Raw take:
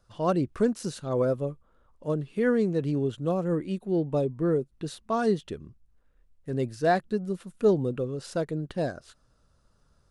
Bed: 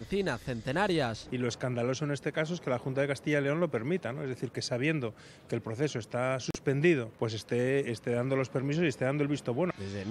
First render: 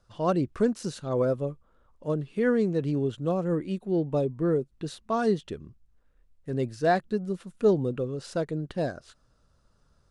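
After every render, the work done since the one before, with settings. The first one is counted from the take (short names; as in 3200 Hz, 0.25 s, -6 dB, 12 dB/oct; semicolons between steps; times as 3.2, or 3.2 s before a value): LPF 9400 Hz 12 dB/oct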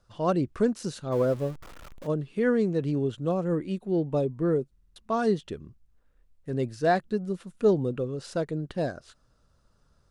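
1.12–2.07 zero-crossing step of -39.5 dBFS; 4.71 stutter in place 0.05 s, 5 plays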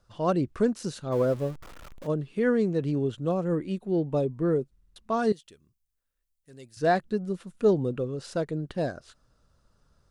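5.32–6.77 pre-emphasis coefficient 0.9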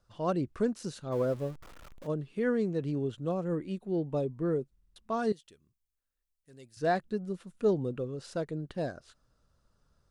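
gain -5 dB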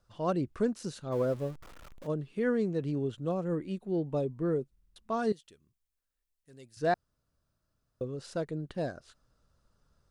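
6.94–8.01 room tone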